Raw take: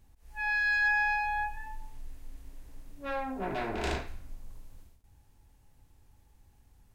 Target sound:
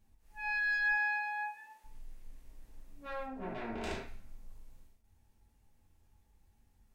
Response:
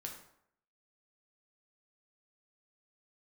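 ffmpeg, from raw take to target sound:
-filter_complex "[0:a]asplit=3[a][b][c];[a]afade=t=out:st=0.92:d=0.02[d];[b]highpass=470,afade=t=in:st=0.92:d=0.02,afade=t=out:st=1.84:d=0.02[e];[c]afade=t=in:st=1.84:d=0.02[f];[d][e][f]amix=inputs=3:normalize=0,asettb=1/sr,asplit=3[g][h][i];[g]atrim=end=3.264[j];[h]atrim=start=3.26:end=3.83,asetpts=PTS-STARTPTS,afade=t=in:d=0.004:c=qsin,afade=t=out:st=0.566:d=0.004:c=qsin,highshelf=f=5.7k:g=-11.5[k];[i]atrim=start=3.826[l];[j][k]acrossfade=d=0.004:c1=hsin:c2=qsin[m];[m][l]acrossfade=d=0.004:c1=qsin:c2=hsin[n];[1:a]atrim=start_sample=2205,atrim=end_sample=4410,asetrate=66150,aresample=44100[o];[n][o]afir=irnorm=-1:irlink=0"

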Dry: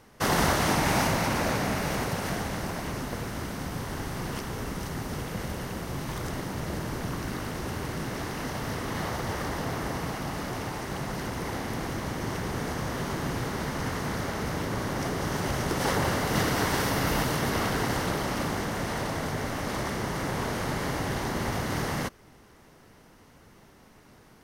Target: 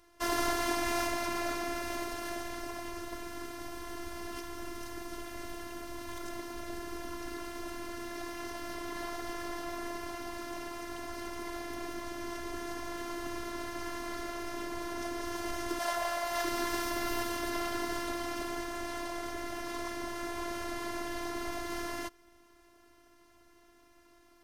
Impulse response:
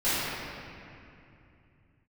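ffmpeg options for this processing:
-filter_complex "[0:a]asettb=1/sr,asplit=3[a][b][c];[a]atrim=end=15.794[d];[b]atrim=start=15.79:end=16.45,asetpts=PTS-STARTPTS,afade=t=in:d=0.004:c=qsin,afade=t=out:st=0.656:d=0.004:c=qsin,lowshelf=f=470:t=q:w=3:g=-7.5[e];[c]atrim=start=16.446[f];[d][e]acrossfade=d=0.004:c1=hsin:c2=qsin[g];[g][f]acrossfade=d=0.004:c1=qsin:c2=hsin,afftfilt=real='hypot(re,im)*cos(PI*b)':imag='0':win_size=512:overlap=0.75,volume=-3dB"

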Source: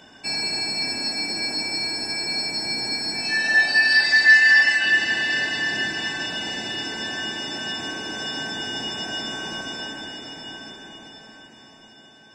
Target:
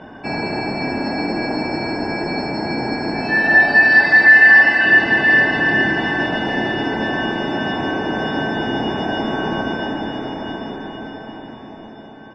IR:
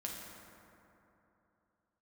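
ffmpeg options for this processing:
-filter_complex "[0:a]lowpass=1.2k,asplit=2[a][b];[b]aecho=0:1:821:0.316[c];[a][c]amix=inputs=2:normalize=0,alimiter=level_in=15dB:limit=-1dB:release=50:level=0:latency=1,volume=-1dB"

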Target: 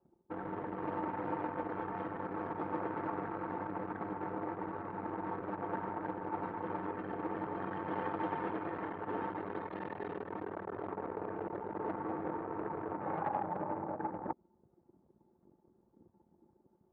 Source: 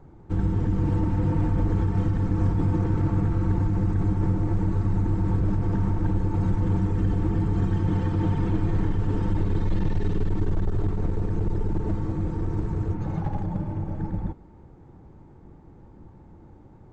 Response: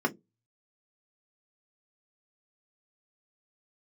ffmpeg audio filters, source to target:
-af "anlmdn=1.58,areverse,acompressor=threshold=-31dB:ratio=10,areverse,aeval=exprs='(tanh(25.1*val(0)+0.45)-tanh(0.45))/25.1':c=same,highpass=630,lowpass=2.1k,volume=15.5dB"

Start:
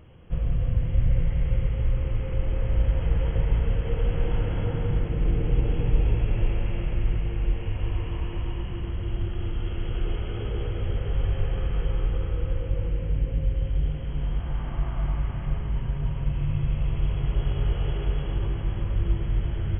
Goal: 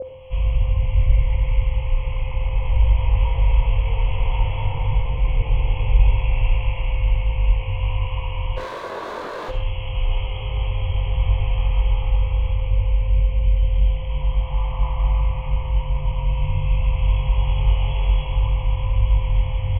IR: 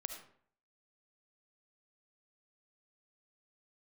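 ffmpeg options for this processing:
-filter_complex "[0:a]firequalizer=gain_entry='entry(120,0);entry(180,-17);entry(300,-16);entry(1000,11);entry(1500,-21);entry(2200,11);entry(5800,2)':delay=0.05:min_phase=1,aeval=exprs='val(0)+0.0562*sin(2*PI*520*n/s)':c=same,asplit=3[a][b][c];[a]afade=t=out:st=8.56:d=0.02[d];[b]aeval=exprs='0.0355*(abs(mod(val(0)/0.0355+3,4)-2)-1)':c=same,afade=t=in:st=8.56:d=0.02,afade=t=out:st=9.48:d=0.02[e];[c]afade=t=in:st=9.48:d=0.02[f];[d][e][f]amix=inputs=3:normalize=0,asplit=2[g][h];[1:a]atrim=start_sample=2205,asetrate=61740,aresample=44100,adelay=22[i];[h][i]afir=irnorm=-1:irlink=0,volume=5dB[j];[g][j]amix=inputs=2:normalize=0,adynamicequalizer=threshold=0.00501:dfrequency=1600:dqfactor=0.7:tfrequency=1600:tqfactor=0.7:attack=5:release=100:ratio=0.375:range=2.5:mode=cutabove:tftype=highshelf,volume=1.5dB"

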